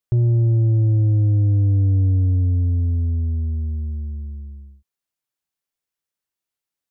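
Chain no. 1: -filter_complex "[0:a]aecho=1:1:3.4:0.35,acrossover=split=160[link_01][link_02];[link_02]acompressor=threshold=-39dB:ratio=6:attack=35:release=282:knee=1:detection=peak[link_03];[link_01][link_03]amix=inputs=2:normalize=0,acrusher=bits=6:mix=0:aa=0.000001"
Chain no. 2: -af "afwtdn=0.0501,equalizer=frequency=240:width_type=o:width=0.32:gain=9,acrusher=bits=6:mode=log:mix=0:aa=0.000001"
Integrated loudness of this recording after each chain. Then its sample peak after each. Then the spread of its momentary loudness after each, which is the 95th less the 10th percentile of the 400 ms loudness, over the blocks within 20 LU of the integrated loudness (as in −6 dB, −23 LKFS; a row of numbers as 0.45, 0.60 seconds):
−21.5, −18.5 LKFS; −12.5, −11.5 dBFS; 12, 12 LU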